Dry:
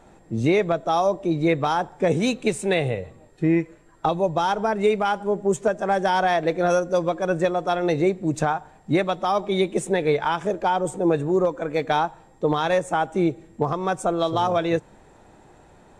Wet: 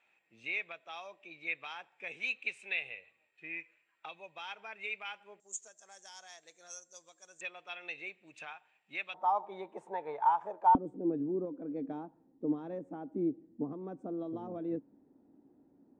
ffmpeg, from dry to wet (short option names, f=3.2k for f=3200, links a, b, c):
-af "asetnsamples=n=441:p=0,asendcmd='5.4 bandpass f 6800;7.41 bandpass f 2600;9.14 bandpass f 900;10.75 bandpass f 270',bandpass=f=2.5k:t=q:w=7.1:csg=0"